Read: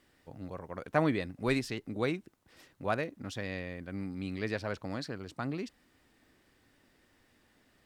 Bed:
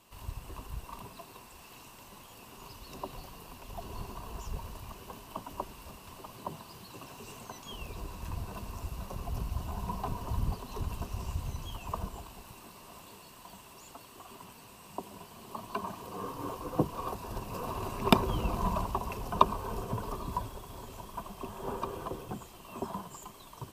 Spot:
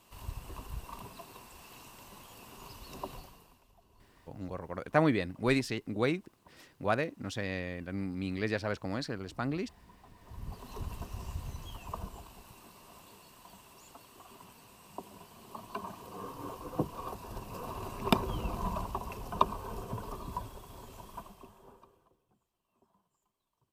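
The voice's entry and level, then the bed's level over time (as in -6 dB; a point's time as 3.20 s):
4.00 s, +2.0 dB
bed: 3.13 s -0.5 dB
3.78 s -22.5 dB
10.10 s -22.5 dB
10.66 s -4 dB
21.17 s -4 dB
22.18 s -33.5 dB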